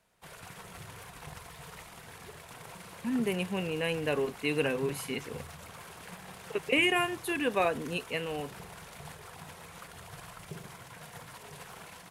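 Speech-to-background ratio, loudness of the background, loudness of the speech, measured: 15.5 dB, -46.5 LUFS, -31.0 LUFS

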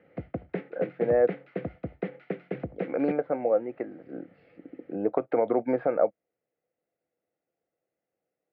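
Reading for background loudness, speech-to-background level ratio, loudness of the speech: -37.0 LUFS, 9.5 dB, -27.5 LUFS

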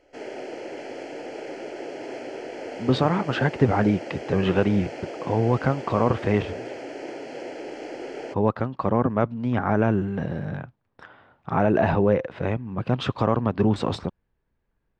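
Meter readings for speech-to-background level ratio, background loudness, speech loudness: 12.0 dB, -36.0 LUFS, -24.0 LUFS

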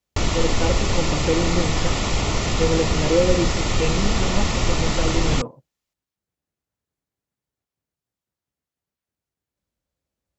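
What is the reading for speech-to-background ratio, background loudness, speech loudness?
-2.5 dB, -23.0 LUFS, -25.5 LUFS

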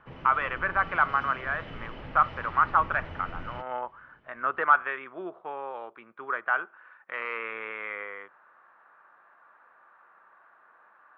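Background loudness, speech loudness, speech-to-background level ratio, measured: -42.5 LUFS, -28.5 LUFS, 14.0 dB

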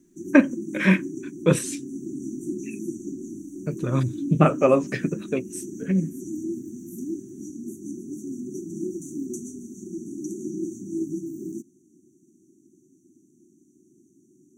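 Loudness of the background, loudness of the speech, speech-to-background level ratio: -34.5 LUFS, -23.0 LUFS, 11.5 dB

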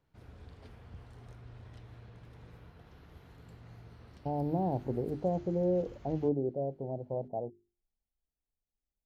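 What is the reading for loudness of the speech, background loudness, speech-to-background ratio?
-34.0 LUFS, -53.5 LUFS, 19.5 dB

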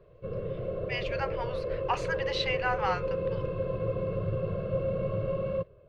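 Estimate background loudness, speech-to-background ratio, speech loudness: -33.0 LUFS, -0.5 dB, -33.5 LUFS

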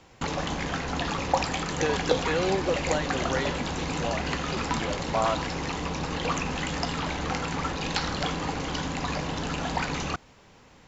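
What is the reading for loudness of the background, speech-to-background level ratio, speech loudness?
-29.5 LUFS, -2.0 dB, -31.5 LUFS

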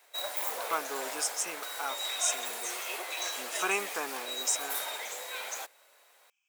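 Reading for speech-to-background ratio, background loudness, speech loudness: 1.5 dB, -35.0 LUFS, -33.5 LUFS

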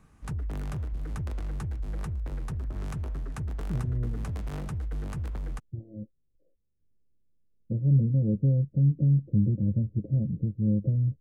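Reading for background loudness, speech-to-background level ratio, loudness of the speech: -35.5 LUFS, 9.0 dB, -26.5 LUFS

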